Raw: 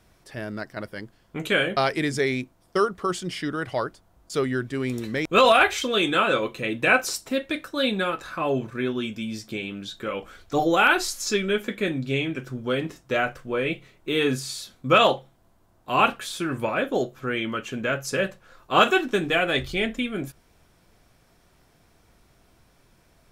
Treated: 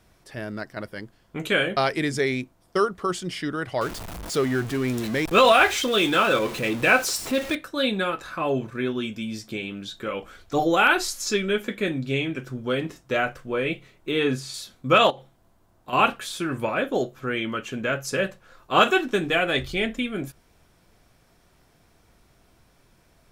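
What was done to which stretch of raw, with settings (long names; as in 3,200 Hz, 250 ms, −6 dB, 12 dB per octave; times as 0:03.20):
0:03.81–0:07.55: converter with a step at zero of −30 dBFS
0:14.11–0:14.54: high-shelf EQ 6,700 Hz −9.5 dB
0:15.10–0:15.93: downward compressor, threshold −32 dBFS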